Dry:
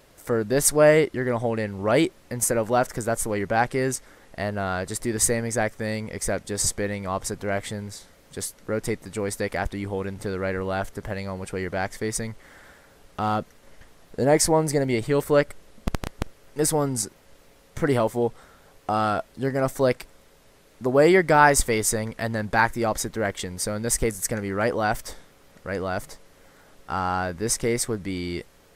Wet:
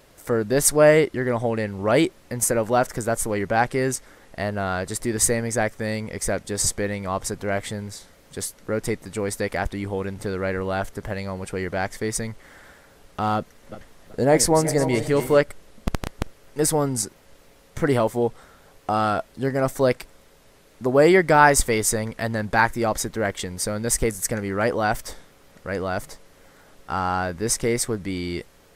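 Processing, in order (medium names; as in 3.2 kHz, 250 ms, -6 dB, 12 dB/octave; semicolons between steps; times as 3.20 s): 13.37–15.41 s: backward echo that repeats 190 ms, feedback 53%, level -10.5 dB; trim +1.5 dB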